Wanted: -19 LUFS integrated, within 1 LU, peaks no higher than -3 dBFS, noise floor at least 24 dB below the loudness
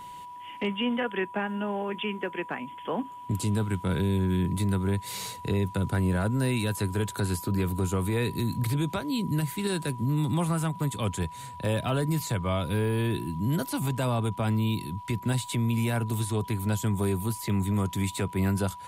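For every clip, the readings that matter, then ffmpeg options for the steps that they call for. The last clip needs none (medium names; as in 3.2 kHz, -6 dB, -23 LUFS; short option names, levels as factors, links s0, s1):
steady tone 980 Hz; tone level -40 dBFS; loudness -29.0 LUFS; peak level -17.0 dBFS; loudness target -19.0 LUFS
-> -af "bandreject=f=980:w=30"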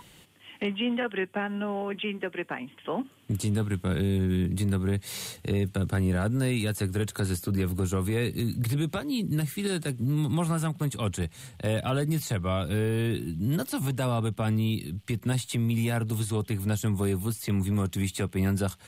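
steady tone not found; loudness -29.0 LUFS; peak level -17.5 dBFS; loudness target -19.0 LUFS
-> -af "volume=3.16"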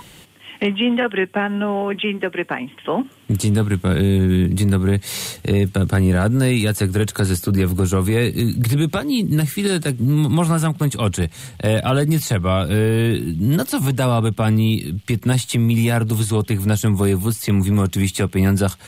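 loudness -19.0 LUFS; peak level -7.5 dBFS; noise floor -44 dBFS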